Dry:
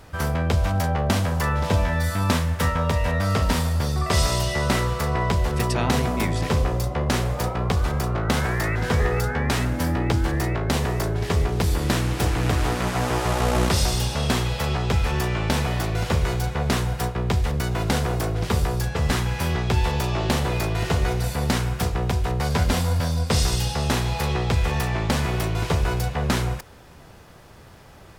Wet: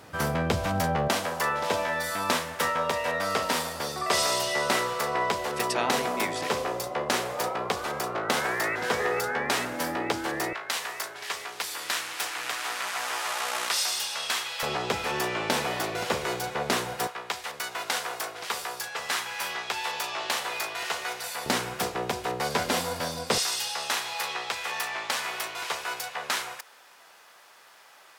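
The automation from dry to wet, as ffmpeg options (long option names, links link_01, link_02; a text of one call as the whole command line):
ffmpeg -i in.wav -af "asetnsamples=nb_out_samples=441:pad=0,asendcmd='1.08 highpass f 410;10.53 highpass f 1200;14.63 highpass f 340;17.07 highpass f 920;21.46 highpass f 330;23.38 highpass f 960',highpass=160" out.wav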